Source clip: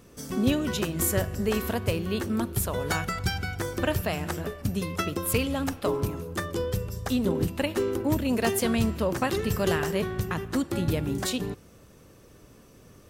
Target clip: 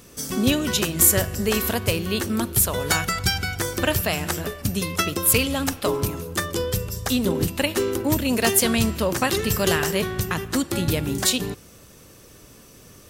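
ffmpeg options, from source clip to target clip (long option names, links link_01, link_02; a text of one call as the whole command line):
ffmpeg -i in.wav -af "highshelf=frequency=2300:gain=9.5,volume=3dB" out.wav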